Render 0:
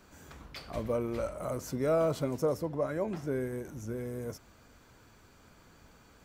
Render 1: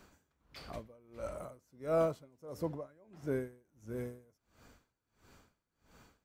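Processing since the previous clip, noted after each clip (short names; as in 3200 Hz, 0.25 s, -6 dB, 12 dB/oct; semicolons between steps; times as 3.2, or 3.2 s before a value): dB-linear tremolo 1.5 Hz, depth 30 dB; gain -1 dB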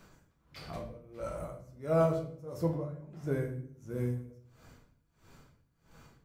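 bell 140 Hz +7.5 dB 0.53 oct; reverb RT60 0.60 s, pre-delay 6 ms, DRR 0.5 dB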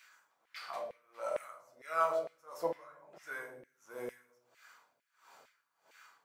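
LFO high-pass saw down 2.2 Hz 560–2200 Hz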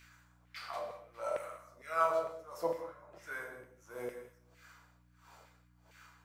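hum 60 Hz, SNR 23 dB; non-linear reverb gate 0.22 s flat, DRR 7.5 dB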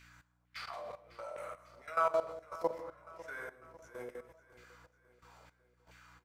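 high shelf 9600 Hz -7.5 dB; level quantiser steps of 16 dB; feedback echo 0.549 s, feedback 51%, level -18 dB; gain +4 dB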